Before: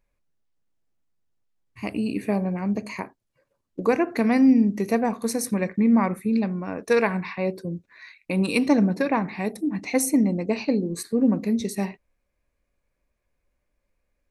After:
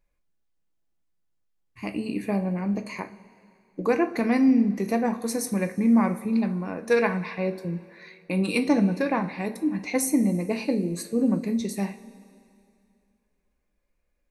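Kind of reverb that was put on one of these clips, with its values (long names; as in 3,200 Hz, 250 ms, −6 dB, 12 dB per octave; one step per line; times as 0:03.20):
coupled-rooms reverb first 0.3 s, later 2.5 s, from −17 dB, DRR 6.5 dB
level −2.5 dB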